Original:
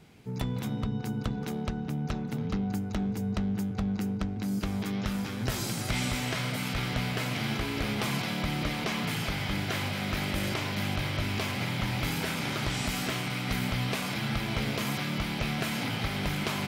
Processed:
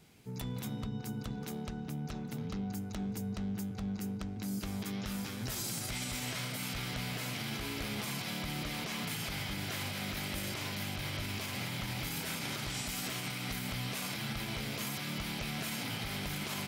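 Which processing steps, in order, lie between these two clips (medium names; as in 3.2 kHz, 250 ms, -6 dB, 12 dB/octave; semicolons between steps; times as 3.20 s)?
treble shelf 4.6 kHz +10.5 dB; peak limiter -21.5 dBFS, peak gain reduction 7 dB; trim -6.5 dB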